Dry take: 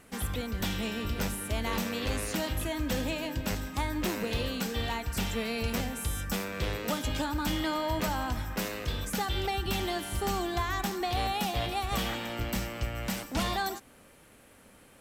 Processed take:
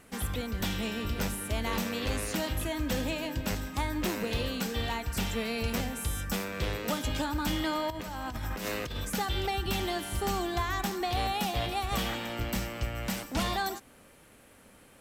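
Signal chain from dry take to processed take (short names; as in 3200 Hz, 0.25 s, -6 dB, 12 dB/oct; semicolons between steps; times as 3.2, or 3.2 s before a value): 7.9–8.97 negative-ratio compressor -36 dBFS, ratio -1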